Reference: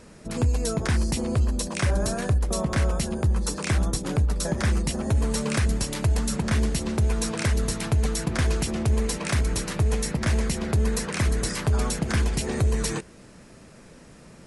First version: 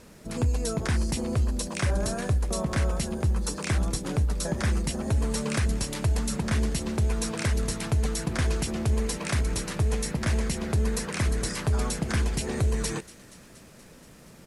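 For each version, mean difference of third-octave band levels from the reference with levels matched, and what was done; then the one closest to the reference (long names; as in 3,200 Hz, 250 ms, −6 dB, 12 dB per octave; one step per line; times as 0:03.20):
1.0 dB: bit reduction 9 bits
delay with a high-pass on its return 237 ms, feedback 73%, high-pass 1,800 Hz, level −18.5 dB
downsampling to 32,000 Hz
level −2.5 dB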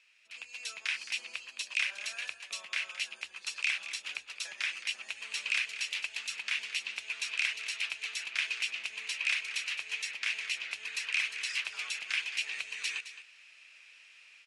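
16.0 dB: automatic gain control gain up to 9.5 dB
four-pole ladder band-pass 2,800 Hz, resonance 70%
on a send: single-tap delay 216 ms −12.5 dB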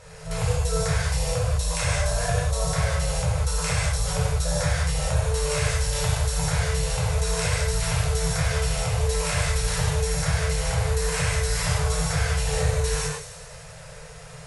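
9.5 dB: brick-wall band-stop 170–420 Hz
downward compressor 2.5 to 1, threshold −32 dBFS, peak gain reduction 9.5 dB
on a send: delay with a high-pass on its return 96 ms, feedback 69%, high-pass 3,800 Hz, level −8.5 dB
on the sum: reverb whose tail is shaped and stops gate 230 ms flat, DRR −8 dB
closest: first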